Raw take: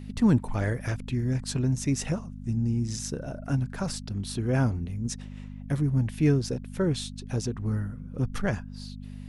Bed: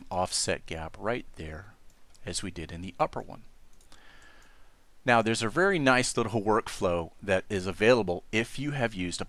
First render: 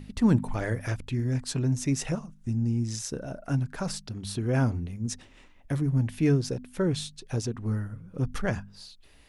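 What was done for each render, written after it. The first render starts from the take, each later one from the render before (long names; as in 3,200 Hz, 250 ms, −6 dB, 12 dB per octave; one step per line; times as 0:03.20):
hum removal 50 Hz, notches 5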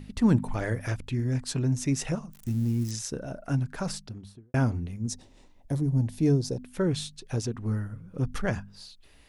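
0:02.33–0:02.91: spike at every zero crossing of −33 dBFS
0:03.88–0:04.54: fade out and dull
0:05.08–0:06.61: flat-topped bell 1,900 Hz −10 dB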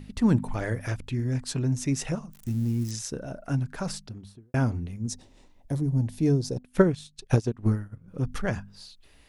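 0:06.56–0:08.08: transient designer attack +11 dB, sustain −12 dB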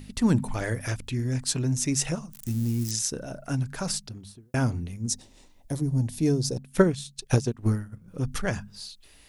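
high-shelf EQ 3,800 Hz +10.5 dB
hum removal 69.79 Hz, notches 3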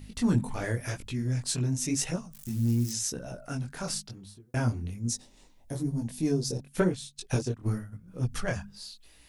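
soft clipping −10 dBFS, distortion −22 dB
multi-voice chorus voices 2, 0.92 Hz, delay 21 ms, depth 4.8 ms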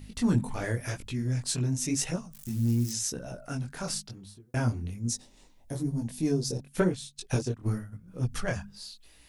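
no processing that can be heard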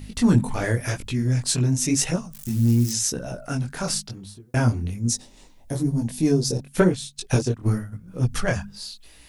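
level +7.5 dB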